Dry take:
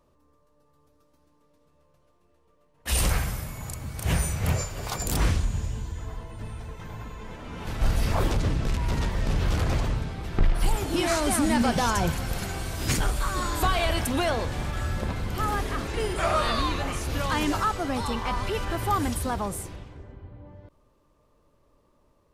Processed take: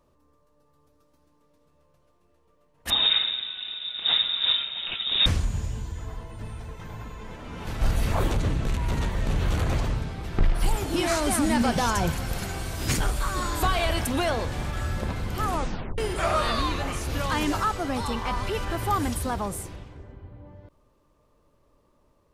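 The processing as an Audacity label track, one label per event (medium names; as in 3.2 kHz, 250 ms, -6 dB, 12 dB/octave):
2.900000	5.260000	frequency inversion carrier 3.7 kHz
7.910000	9.770000	peaking EQ 5.1 kHz -7.5 dB 0.21 oct
15.450000	15.450000	tape stop 0.53 s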